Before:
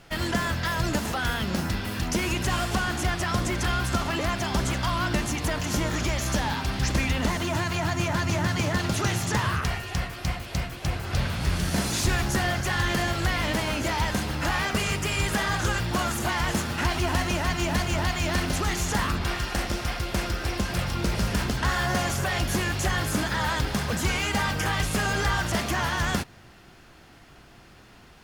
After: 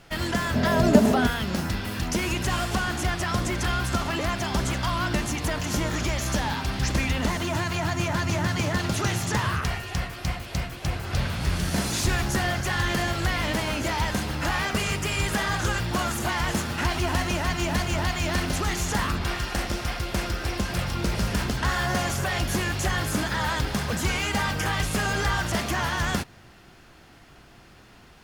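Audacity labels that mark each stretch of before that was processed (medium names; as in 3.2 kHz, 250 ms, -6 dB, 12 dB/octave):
0.540000	1.270000	small resonant body resonances 240/410/610 Hz, height 17 dB, ringing for 50 ms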